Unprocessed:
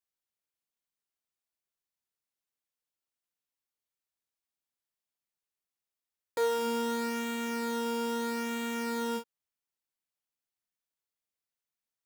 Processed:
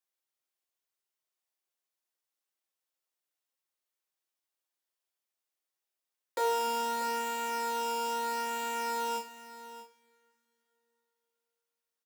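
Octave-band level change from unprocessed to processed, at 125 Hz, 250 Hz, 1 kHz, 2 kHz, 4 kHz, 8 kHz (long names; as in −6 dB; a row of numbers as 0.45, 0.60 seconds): can't be measured, −12.5 dB, +5.5 dB, −0.5 dB, +0.5 dB, +2.5 dB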